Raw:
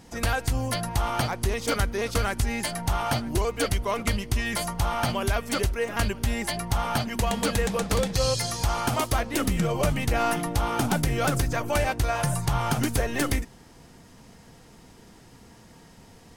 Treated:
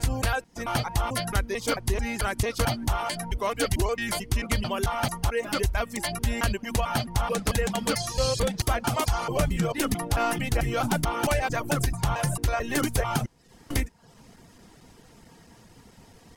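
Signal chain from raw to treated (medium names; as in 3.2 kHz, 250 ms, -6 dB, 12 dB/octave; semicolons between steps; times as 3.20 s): slices played last to first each 221 ms, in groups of 3; reverb removal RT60 0.54 s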